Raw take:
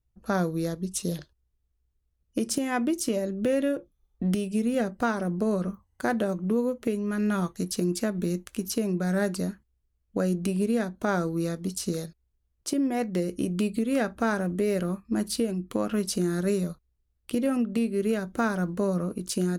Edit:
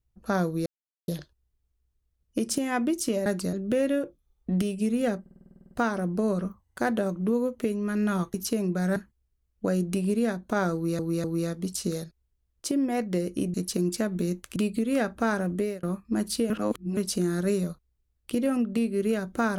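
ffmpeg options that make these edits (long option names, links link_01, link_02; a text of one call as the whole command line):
ffmpeg -i in.wav -filter_complex "[0:a]asplit=24[link_01][link_02][link_03][link_04][link_05][link_06][link_07][link_08][link_09][link_10][link_11][link_12][link_13][link_14][link_15][link_16][link_17][link_18][link_19][link_20][link_21][link_22][link_23][link_24];[link_01]atrim=end=0.66,asetpts=PTS-STARTPTS,afade=type=out:start_time=0.656:duration=0.004:curve=hsin[link_25];[link_02]atrim=start=0.66:end=1.08,asetpts=PTS-STARTPTS,volume=0[link_26];[link_03]atrim=start=1.08:end=3.262,asetpts=PTS-STARTPTS,afade=type=in:duration=0.004:curve=hsin[link_27];[link_04]atrim=start=9.208:end=9.482[link_28];[link_05]atrim=start=3.258:end=4.992[link_29];[link_06]atrim=start=4.938:end=4.992[link_30];[link_07]atrim=start=4.938:end=4.992[link_31];[link_08]atrim=start=4.938:end=4.992[link_32];[link_09]atrim=start=4.938:end=4.992[link_33];[link_10]atrim=start=4.938:end=4.992[link_34];[link_11]atrim=start=4.938:end=4.992[link_35];[link_12]atrim=start=4.938:end=4.992[link_36];[link_13]atrim=start=4.938:end=4.992[link_37];[link_14]atrim=start=4.938:end=4.992[link_38];[link_15]atrim=start=4.938:end=7.572[link_39];[link_16]atrim=start=8.588:end=9.212[link_40];[link_17]atrim=start=9.478:end=11.512[link_41];[link_18]atrim=start=11.258:end=11.512[link_42];[link_19]atrim=start=11.258:end=13.562[link_43];[link_20]atrim=start=7.568:end=8.592[link_44];[link_21]atrim=start=13.558:end=14.83,asetpts=PTS-STARTPTS,afade=type=out:start_time=1.022:duration=0.25[link_45];[link_22]atrim=start=14.83:end=15.502,asetpts=PTS-STARTPTS,afade=type=in:duration=0.004:curve=hsin[link_46];[link_23]atrim=start=15.498:end=15.972,asetpts=PTS-STARTPTS,areverse[link_47];[link_24]atrim=start=15.968[link_48];[link_25][link_26][link_27]concat=n=3:v=0:a=1[link_49];[link_49][link_28]acrossfade=duration=0.004:curve1=hsin:curve2=hsin[link_50];[link_50][link_29]acrossfade=duration=0.004:curve1=hsin:curve2=hsin[link_51];[link_51][link_30]acrossfade=duration=0.004:curve1=hsin:curve2=hsin[link_52];[link_52][link_31]acrossfade=duration=0.004:curve1=hsin:curve2=hsin[link_53];[link_53][link_32]acrossfade=duration=0.004:curve1=hsin:curve2=hsin[link_54];[link_54][link_33]acrossfade=duration=0.004:curve1=hsin:curve2=hsin[link_55];[link_55][link_34]acrossfade=duration=0.004:curve1=hsin:curve2=hsin[link_56];[link_56][link_35]acrossfade=duration=0.004:curve1=hsin:curve2=hsin[link_57];[link_57][link_36]acrossfade=duration=0.004:curve1=hsin:curve2=hsin[link_58];[link_58][link_37]acrossfade=duration=0.004:curve1=hsin:curve2=hsin[link_59];[link_59][link_38]acrossfade=duration=0.004:curve1=hsin:curve2=hsin[link_60];[link_60][link_39]acrossfade=duration=0.004:curve1=hsin:curve2=hsin[link_61];[link_61][link_40]acrossfade=duration=0.004:curve1=hsin:curve2=hsin[link_62];[link_62][link_41]acrossfade=duration=0.004:curve1=hsin:curve2=hsin[link_63];[link_63][link_42]acrossfade=duration=0.004:curve1=hsin:curve2=hsin[link_64];[link_64][link_43]acrossfade=duration=0.004:curve1=hsin:curve2=hsin[link_65];[link_65][link_44]acrossfade=duration=0.004:curve1=hsin:curve2=hsin[link_66];[link_45][link_46]concat=n=2:v=0:a=1[link_67];[link_66][link_67]acrossfade=duration=0.004:curve1=hsin:curve2=hsin[link_68];[link_68][link_47]acrossfade=duration=0.004:curve1=hsin:curve2=hsin[link_69];[link_69][link_48]acrossfade=duration=0.004:curve1=hsin:curve2=hsin" out.wav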